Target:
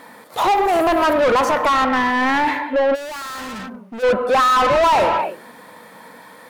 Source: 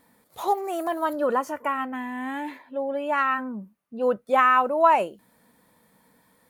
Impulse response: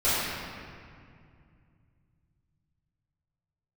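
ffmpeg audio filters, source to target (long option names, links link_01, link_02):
-filter_complex "[0:a]asplit=2[link_01][link_02];[1:a]atrim=start_sample=2205,afade=type=out:start_time=0.35:duration=0.01,atrim=end_sample=15876[link_03];[link_02][link_03]afir=irnorm=-1:irlink=0,volume=-26.5dB[link_04];[link_01][link_04]amix=inputs=2:normalize=0,asplit=2[link_05][link_06];[link_06]highpass=frequency=720:poles=1,volume=33dB,asoftclip=type=tanh:threshold=-6dB[link_07];[link_05][link_07]amix=inputs=2:normalize=0,lowpass=frequency=2200:poles=1,volume=-6dB,asplit=3[link_08][link_09][link_10];[link_08]afade=type=out:start_time=2.94:duration=0.02[link_11];[link_09]volume=27.5dB,asoftclip=hard,volume=-27.5dB,afade=type=in:start_time=2.94:duration=0.02,afade=type=out:start_time=4.02:duration=0.02[link_12];[link_10]afade=type=in:start_time=4.02:duration=0.02[link_13];[link_11][link_12][link_13]amix=inputs=3:normalize=0,volume=-2dB"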